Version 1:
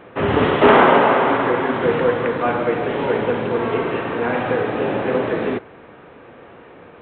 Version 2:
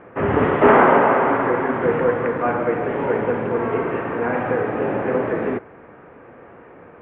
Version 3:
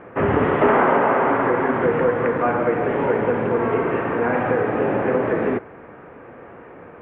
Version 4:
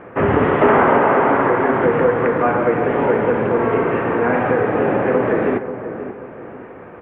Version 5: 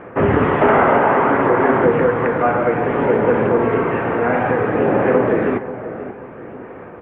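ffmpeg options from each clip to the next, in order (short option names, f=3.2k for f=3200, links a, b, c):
-af "lowpass=f=2.2k:w=0.5412,lowpass=f=2.2k:w=1.3066,volume=-1dB"
-af "acompressor=threshold=-18dB:ratio=2.5,volume=2.5dB"
-filter_complex "[0:a]asplit=2[a][b];[b]adelay=535,lowpass=f=1.3k:p=1,volume=-10dB,asplit=2[c][d];[d]adelay=535,lowpass=f=1.3k:p=1,volume=0.38,asplit=2[e][f];[f]adelay=535,lowpass=f=1.3k:p=1,volume=0.38,asplit=2[g][h];[h]adelay=535,lowpass=f=1.3k:p=1,volume=0.38[i];[a][c][e][g][i]amix=inputs=5:normalize=0,volume=3dB"
-af "aphaser=in_gain=1:out_gain=1:delay=1.5:decay=0.21:speed=0.59:type=sinusoidal"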